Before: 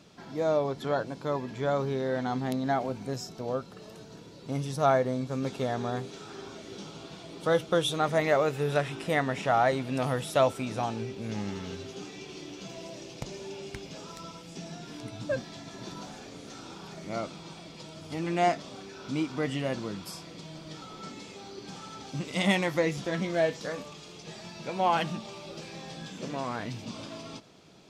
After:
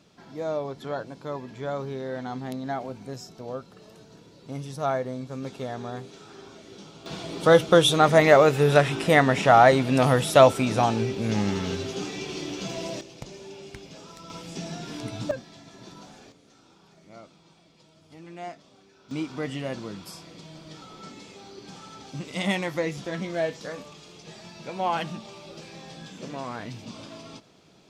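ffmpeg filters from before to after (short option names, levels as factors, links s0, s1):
-af "asetnsamples=n=441:p=0,asendcmd='7.06 volume volume 9dB;13.01 volume volume -2dB;14.3 volume volume 6dB;15.31 volume volume -4.5dB;16.32 volume volume -13dB;19.11 volume volume -1dB',volume=0.708"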